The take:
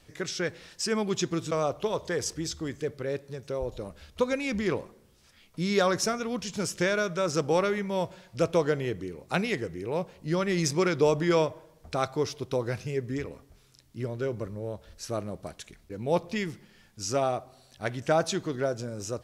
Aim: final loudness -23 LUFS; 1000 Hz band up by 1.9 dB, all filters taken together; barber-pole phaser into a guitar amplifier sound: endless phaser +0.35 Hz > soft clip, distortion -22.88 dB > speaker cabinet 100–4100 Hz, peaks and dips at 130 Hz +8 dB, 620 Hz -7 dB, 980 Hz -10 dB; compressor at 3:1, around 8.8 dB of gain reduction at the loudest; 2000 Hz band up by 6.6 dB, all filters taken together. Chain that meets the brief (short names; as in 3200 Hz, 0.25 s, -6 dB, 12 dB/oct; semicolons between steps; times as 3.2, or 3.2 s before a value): bell 1000 Hz +6.5 dB; bell 2000 Hz +7 dB; compressor 3:1, threshold -28 dBFS; endless phaser +0.35 Hz; soft clip -22 dBFS; speaker cabinet 100–4100 Hz, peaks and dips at 130 Hz +8 dB, 620 Hz -7 dB, 980 Hz -10 dB; gain +14.5 dB